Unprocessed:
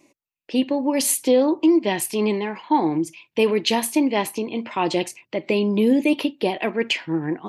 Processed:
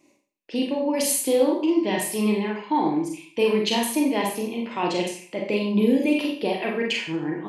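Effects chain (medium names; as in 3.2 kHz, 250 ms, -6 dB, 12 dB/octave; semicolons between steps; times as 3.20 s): Schroeder reverb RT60 0.48 s, combs from 30 ms, DRR -0.5 dB; trim -5 dB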